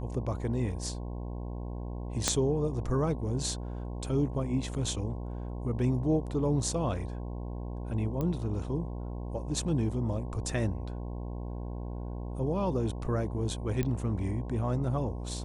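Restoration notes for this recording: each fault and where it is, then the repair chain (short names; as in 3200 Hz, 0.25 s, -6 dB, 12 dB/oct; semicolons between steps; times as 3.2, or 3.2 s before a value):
buzz 60 Hz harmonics 18 -37 dBFS
2.28 pop -10 dBFS
8.21 pop -21 dBFS
13.83 pop -18 dBFS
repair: de-click; de-hum 60 Hz, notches 18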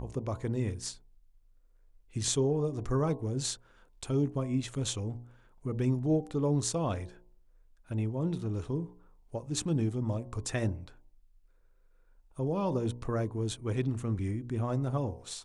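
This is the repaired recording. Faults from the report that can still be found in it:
2.28 pop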